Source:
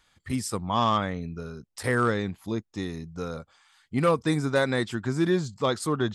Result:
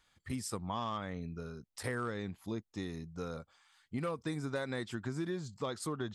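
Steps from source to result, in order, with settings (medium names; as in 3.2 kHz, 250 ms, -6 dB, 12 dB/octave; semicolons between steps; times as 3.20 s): compression 6:1, threshold -27 dBFS, peak gain reduction 9.5 dB; trim -6.5 dB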